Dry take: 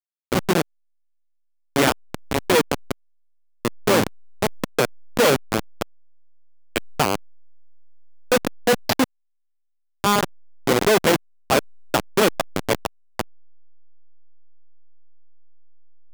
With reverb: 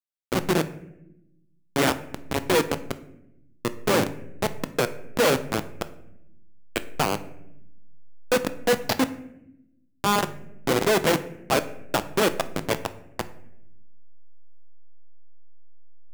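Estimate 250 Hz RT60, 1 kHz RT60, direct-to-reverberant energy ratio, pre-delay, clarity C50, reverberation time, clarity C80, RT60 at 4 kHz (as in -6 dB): 1.5 s, 0.70 s, 10.5 dB, 6 ms, 15.0 dB, 0.85 s, 17.5 dB, 0.50 s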